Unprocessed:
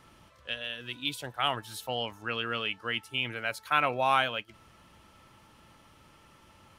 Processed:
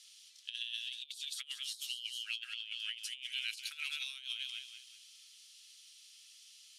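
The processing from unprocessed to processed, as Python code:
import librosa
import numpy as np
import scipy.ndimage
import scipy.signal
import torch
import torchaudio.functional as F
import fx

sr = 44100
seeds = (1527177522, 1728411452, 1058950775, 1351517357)

p1 = scipy.signal.sosfilt(scipy.signal.cheby2(4, 80, 640.0, 'highpass', fs=sr, output='sos'), x)
p2 = p1 + fx.echo_feedback(p1, sr, ms=188, feedback_pct=36, wet_db=-10, dry=0)
p3 = fx.over_compress(p2, sr, threshold_db=-49.0, ratio=-0.5)
p4 = scipy.signal.sosfilt(scipy.signal.butter(2, 8700.0, 'lowpass', fs=sr, output='sos'), p3)
y = p4 * librosa.db_to_amplitude(8.0)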